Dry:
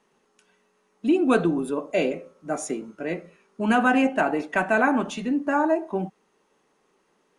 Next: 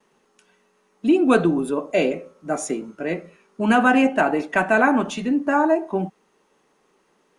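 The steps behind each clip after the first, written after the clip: gate with hold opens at -59 dBFS; gain +3.5 dB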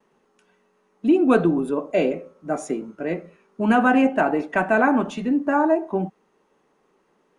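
high shelf 2400 Hz -9 dB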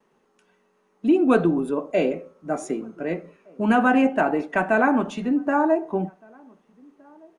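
outdoor echo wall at 260 m, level -28 dB; gain -1 dB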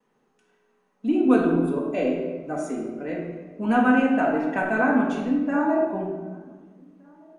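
shoebox room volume 930 m³, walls mixed, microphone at 1.9 m; gain -6.5 dB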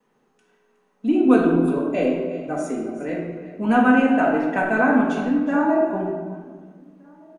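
echo 0.366 s -15 dB; gain +3 dB

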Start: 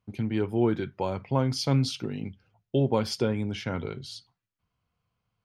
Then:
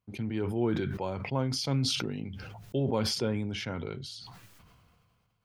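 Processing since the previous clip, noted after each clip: sustainer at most 26 dB/s; gain -5.5 dB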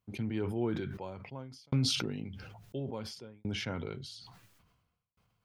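tremolo saw down 0.58 Hz, depth 100%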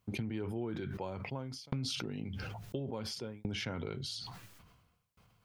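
compressor 8:1, threshold -42 dBFS, peak gain reduction 16.5 dB; gain +7.5 dB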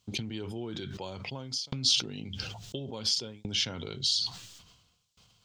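band shelf 4800 Hz +14.5 dB

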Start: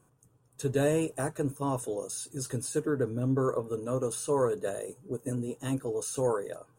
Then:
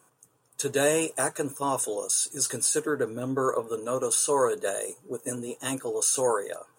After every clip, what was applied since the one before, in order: HPF 860 Hz 6 dB/oct; dynamic EQ 7700 Hz, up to +4 dB, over -50 dBFS, Q 0.71; gain +9 dB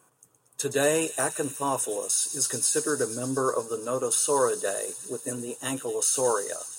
thin delay 0.118 s, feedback 84%, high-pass 3900 Hz, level -10 dB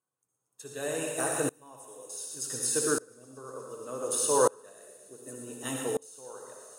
reverb RT60 1.0 s, pre-delay 53 ms, DRR 2.5 dB; dB-ramp tremolo swelling 0.67 Hz, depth 29 dB

